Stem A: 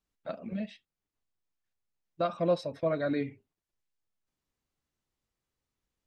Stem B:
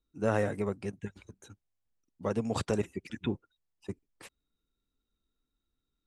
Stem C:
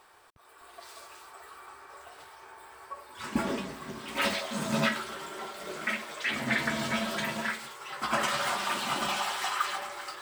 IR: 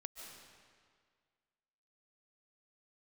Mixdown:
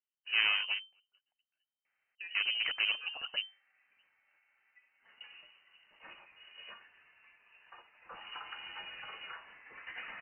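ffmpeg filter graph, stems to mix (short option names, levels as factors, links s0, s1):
-filter_complex "[0:a]lowshelf=f=110:g=-8,bandreject=f=84.93:t=h:w=4,bandreject=f=169.86:t=h:w=4,bandreject=f=254.79:t=h:w=4,bandreject=f=339.72:t=h:w=4,bandreject=f=424.65:t=h:w=4,bandreject=f=509.58:t=h:w=4,bandreject=f=594.51:t=h:w=4,bandreject=f=679.44:t=h:w=4,bandreject=f=764.37:t=h:w=4,bandreject=f=849.3:t=h:w=4,bandreject=f=934.23:t=h:w=4,bandreject=f=1019.16:t=h:w=4,bandreject=f=1104.09:t=h:w=4,bandreject=f=1189.02:t=h:w=4,bandreject=f=1273.95:t=h:w=4,bandreject=f=1358.88:t=h:w=4,bandreject=f=1443.81:t=h:w=4,bandreject=f=1528.74:t=h:w=4,bandreject=f=1613.67:t=h:w=4,bandreject=f=1698.6:t=h:w=4,bandreject=f=1783.53:t=h:w=4,bandreject=f=1868.46:t=h:w=4,bandreject=f=1953.39:t=h:w=4,bandreject=f=2038.32:t=h:w=4,bandreject=f=2123.25:t=h:w=4,bandreject=f=2208.18:t=h:w=4,bandreject=f=2293.11:t=h:w=4,volume=0.251,asplit=2[s0][s1];[1:a]equalizer=f=1000:t=o:w=2.9:g=4,aeval=exprs='clip(val(0),-1,0.0188)':c=same,adelay=100,volume=0.794[s2];[2:a]adelay=1850,volume=0.299,afade=t=in:st=7.92:d=0.62:silence=0.223872[s3];[s1]apad=whole_len=271769[s4];[s2][s4]sidechaingate=range=0.0224:threshold=0.001:ratio=16:detection=peak[s5];[s0][s3]amix=inputs=2:normalize=0,acompressor=threshold=0.00708:ratio=3,volume=1[s6];[s5][s6]amix=inputs=2:normalize=0,lowpass=f=2600:t=q:w=0.5098,lowpass=f=2600:t=q:w=0.6013,lowpass=f=2600:t=q:w=0.9,lowpass=f=2600:t=q:w=2.563,afreqshift=-3100"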